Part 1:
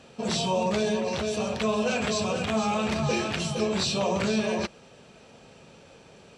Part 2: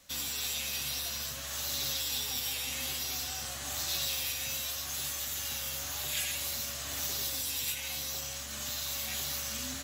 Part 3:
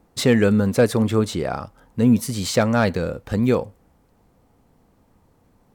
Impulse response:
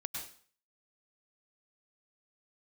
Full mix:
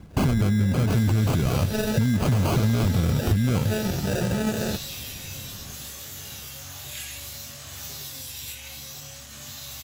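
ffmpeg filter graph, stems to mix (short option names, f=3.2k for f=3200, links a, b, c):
-filter_complex "[0:a]lowpass=3.1k,acrusher=samples=41:mix=1:aa=0.000001,adelay=100,volume=-9dB[a];[1:a]flanger=delay=19.5:depth=5.3:speed=0.71,adelay=800,volume=0.5dB[b];[2:a]equalizer=f=500:t=o:w=1:g=-10,equalizer=f=1k:t=o:w=1:g=-7,equalizer=f=2k:t=o:w=1:g=12,acompressor=threshold=-20dB:ratio=6,acrusher=samples=24:mix=1:aa=0.000001,volume=3dB,asplit=2[c][d];[d]apad=whole_len=285406[e];[a][e]sidechaincompress=threshold=-25dB:ratio=8:attack=16:release=105[f];[f][c]amix=inputs=2:normalize=0,acontrast=79,alimiter=limit=-16dB:level=0:latency=1:release=16,volume=0dB[g];[b][g]amix=inputs=2:normalize=0,equalizer=f=100:w=0.81:g=10.5,acompressor=threshold=-18dB:ratio=6"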